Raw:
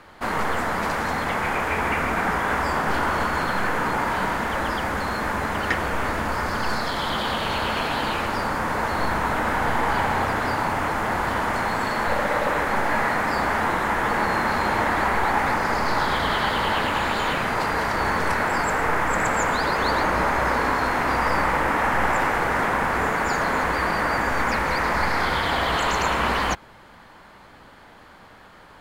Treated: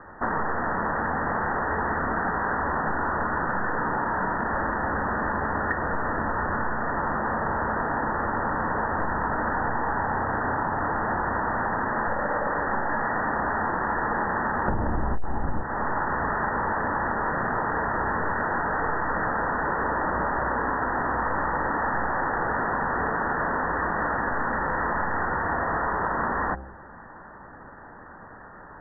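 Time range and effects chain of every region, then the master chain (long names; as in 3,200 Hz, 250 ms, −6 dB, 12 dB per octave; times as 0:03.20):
0:14.68–0:15.63: spectral tilt −4.5 dB per octave + upward compression, threshold −7 dBFS + hard clipping −4 dBFS
whole clip: Chebyshev low-pass filter 1,900 Hz, order 10; hum removal 66 Hz, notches 12; downward compressor 6 to 1, threshold −27 dBFS; level +4 dB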